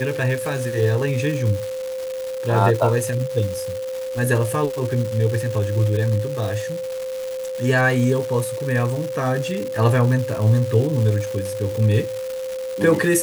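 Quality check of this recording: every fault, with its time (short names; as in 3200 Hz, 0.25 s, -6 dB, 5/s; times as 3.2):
crackle 470/s -26 dBFS
tone 520 Hz -25 dBFS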